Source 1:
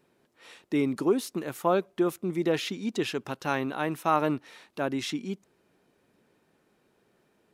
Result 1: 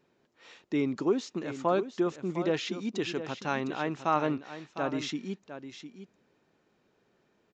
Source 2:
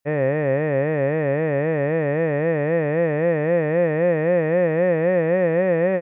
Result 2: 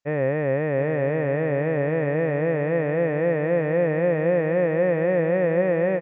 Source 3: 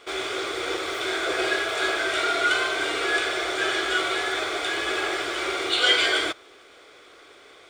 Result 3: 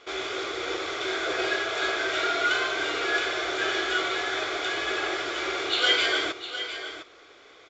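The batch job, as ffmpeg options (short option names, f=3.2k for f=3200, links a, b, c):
-filter_complex "[0:a]asplit=2[a][b];[b]aecho=0:1:706:0.282[c];[a][c]amix=inputs=2:normalize=0,aresample=16000,aresample=44100,volume=-2.5dB"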